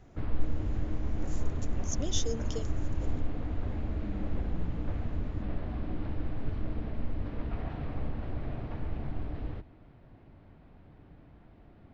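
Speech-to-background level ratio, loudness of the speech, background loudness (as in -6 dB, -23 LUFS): -3.0 dB, -40.5 LUFS, -37.5 LUFS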